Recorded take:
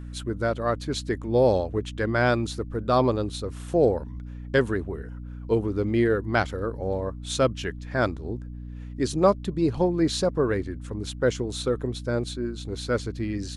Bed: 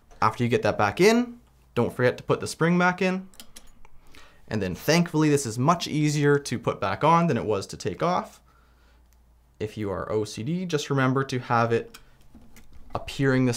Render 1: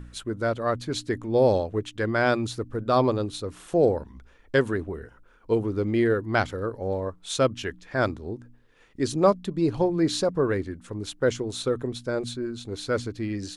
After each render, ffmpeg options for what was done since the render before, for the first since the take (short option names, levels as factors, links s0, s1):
-af "bandreject=f=60:t=h:w=4,bandreject=f=120:t=h:w=4,bandreject=f=180:t=h:w=4,bandreject=f=240:t=h:w=4,bandreject=f=300:t=h:w=4"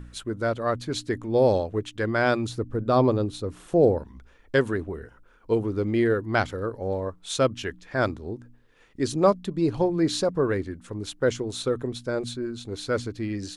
-filter_complex "[0:a]asettb=1/sr,asplit=3[s0][s1][s2];[s0]atrim=end=2.494[s3];[s1]atrim=start=2.49:end=3.99,asetpts=PTS-STARTPTS,afade=t=in:d=0.004:c=qsin,afade=t=out:st=1.496:d=0.004:c=qsin,tiltshelf=f=730:g=3.5[s4];[s2]atrim=start=3.986[s5];[s3][s4]acrossfade=d=0.004:c1=hsin:c2=qsin[s6];[s6][s5]acrossfade=d=0.004:c1=qsin:c2=hsin"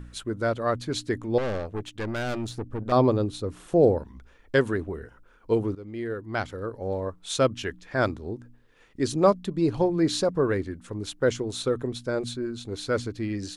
-filter_complex "[0:a]asettb=1/sr,asplit=3[s0][s1][s2];[s0]atrim=end=1.384[s3];[s1]atrim=start=1.38:end=2.92,asetpts=PTS-STARTPTS,afade=t=in:d=0.004:c=qsin,afade=t=out:st=1.536:d=0.004:c=qsin,aeval=exprs='(tanh(20*val(0)+0.5)-tanh(0.5))/20':c=same[s4];[s2]atrim=start=2.916[s5];[s3][s4]acrossfade=d=0.004:c1=hsin:c2=qsin[s6];[s6][s5]acrossfade=d=0.004:c1=qsin:c2=hsin,asplit=2[s7][s8];[s7]atrim=end=5.75,asetpts=PTS-STARTPTS,afade=t=out:st=5.746:d=0.004:c=hsin:silence=0.133352[s9];[s8]atrim=start=5.75,asetpts=PTS-STARTPTS,afade=t=in:d=1.41:silence=0.133352[s10];[s9][s10]concat=n=2:v=0:a=1"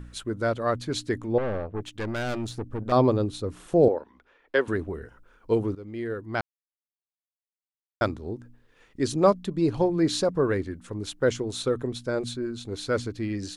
-filter_complex "[0:a]asplit=3[s0][s1][s2];[s0]afade=t=out:st=1.32:d=0.02[s3];[s1]lowpass=2000,afade=t=in:st=1.32:d=0.02,afade=t=out:st=1.8:d=0.02[s4];[s2]afade=t=in:st=1.8:d=0.02[s5];[s3][s4][s5]amix=inputs=3:normalize=0,asettb=1/sr,asplit=3[s6][s7][s8];[s6]atrim=end=3.884[s9];[s7]atrim=start=3.88:end=4.68,asetpts=PTS-STARTPTS,afade=t=in:d=0.004:c=qsin,afade=t=out:st=0.796:d=0.004:c=qsin,acrossover=split=300 4100:gain=0.0794 1 0.141[s10][s11][s12];[s10][s11][s12]amix=inputs=3:normalize=0[s13];[s8]atrim=start=4.676[s14];[s9][s13]acrossfade=d=0.004:c1=hsin:c2=qsin[s15];[s15][s14]acrossfade=d=0.004:c1=qsin:c2=hsin,asplit=3[s16][s17][s18];[s16]atrim=end=6.41,asetpts=PTS-STARTPTS,afade=t=out:st=6.406:d=0.004:c=hsin[s19];[s17]atrim=start=6.41:end=8.01,asetpts=PTS-STARTPTS,volume=0[s20];[s18]atrim=start=8.01,asetpts=PTS-STARTPTS,afade=t=in:d=0.004:c=hsin[s21];[s19][s20][s21]concat=n=3:v=0:a=1"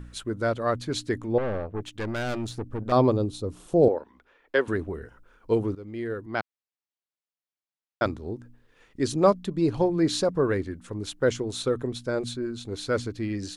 -filter_complex "[0:a]asettb=1/sr,asplit=3[s0][s1][s2];[s0]atrim=end=3.124[s3];[s1]atrim=start=3.12:end=3.82,asetpts=PTS-STARTPTS,afade=t=in:d=0.004:c=qsin,afade=t=out:st=0.696:d=0.004:c=qsin,equalizer=f=1800:w=1.2:g=-10[s4];[s2]atrim=start=3.816[s5];[s3][s4]acrossfade=d=0.004:c1=hsin:c2=qsin[s6];[s6][s5]acrossfade=d=0.004:c1=qsin:c2=hsin,asettb=1/sr,asplit=3[s7][s8][s9];[s7]atrim=end=6.264[s10];[s8]atrim=start=6.26:end=8.06,asetpts=PTS-STARTPTS,afade=t=in:d=0.004:c=qsin,afade=t=out:st=1.796:d=0.004:c=qsin,highpass=140,lowpass=5700[s11];[s9]atrim=start=8.056[s12];[s10][s11]acrossfade=d=0.004:c1=hsin:c2=qsin[s13];[s13][s12]acrossfade=d=0.004:c1=qsin:c2=hsin"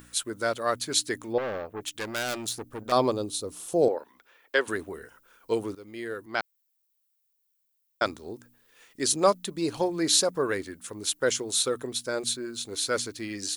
-af "aemphasis=mode=production:type=riaa"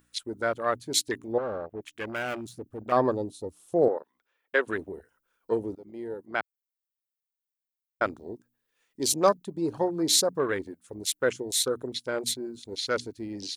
-af "afwtdn=0.0178"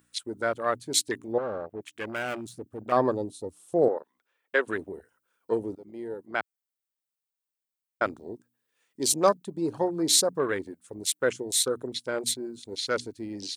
-af "highpass=81,equalizer=f=8400:t=o:w=0.27:g=4.5"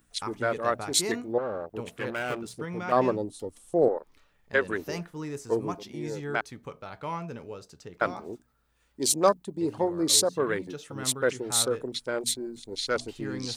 -filter_complex "[1:a]volume=0.178[s0];[0:a][s0]amix=inputs=2:normalize=0"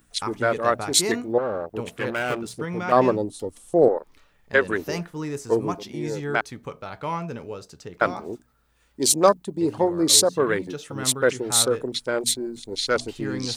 -af "volume=1.88,alimiter=limit=0.708:level=0:latency=1"